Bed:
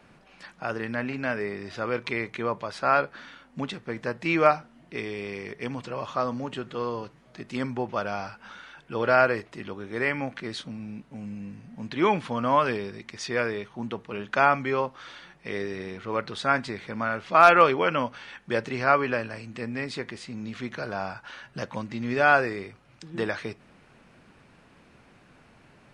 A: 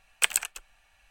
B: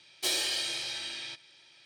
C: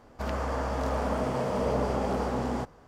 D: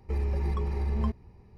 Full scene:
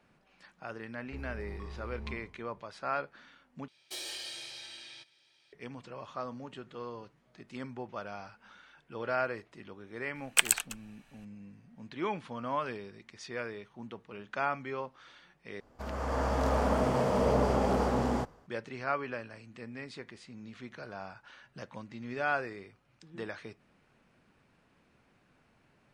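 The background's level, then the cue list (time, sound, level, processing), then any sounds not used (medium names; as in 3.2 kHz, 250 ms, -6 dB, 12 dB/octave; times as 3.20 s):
bed -11.5 dB
1.03 s: add D -15 dB + spectral sustain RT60 0.64 s
3.68 s: replace with B -9.5 dB + peak limiter -20.5 dBFS
10.15 s: add A -0.5 dB
15.60 s: replace with C -8.5 dB + level rider gain up to 9.5 dB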